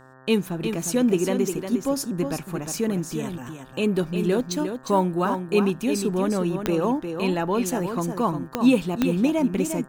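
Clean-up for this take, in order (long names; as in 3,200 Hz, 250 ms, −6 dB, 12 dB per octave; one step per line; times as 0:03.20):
click removal
hum removal 130.8 Hz, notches 14
echo removal 355 ms −7.5 dB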